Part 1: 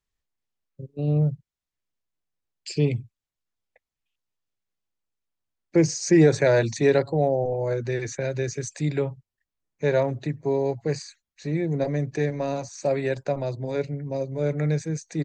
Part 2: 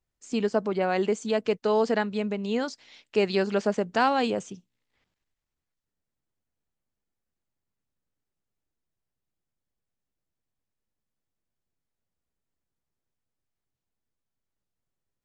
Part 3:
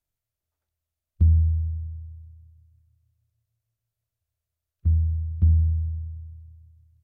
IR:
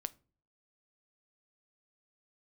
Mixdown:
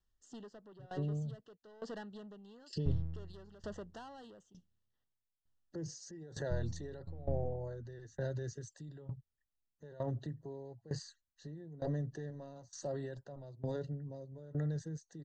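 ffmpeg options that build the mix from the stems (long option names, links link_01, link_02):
-filter_complex "[0:a]lowshelf=frequency=130:gain=10.5,alimiter=limit=-19dB:level=0:latency=1:release=12,volume=-3dB[link_01];[1:a]acompressor=threshold=-24dB:ratio=4,asoftclip=type=tanh:threshold=-29dB,volume=-8dB[link_02];[2:a]aeval=exprs='max(val(0),0)':channel_layout=same,adelay=1650,volume=-9.5dB[link_03];[link_01][link_02]amix=inputs=2:normalize=0,asuperstop=centerf=2300:order=12:qfactor=3,alimiter=level_in=3.5dB:limit=-24dB:level=0:latency=1:release=489,volume=-3.5dB,volume=0dB[link_04];[link_03][link_04]amix=inputs=2:normalize=0,lowpass=7500,aeval=exprs='val(0)*pow(10,-19*if(lt(mod(1.1*n/s,1),2*abs(1.1)/1000),1-mod(1.1*n/s,1)/(2*abs(1.1)/1000),(mod(1.1*n/s,1)-2*abs(1.1)/1000)/(1-2*abs(1.1)/1000))/20)':channel_layout=same"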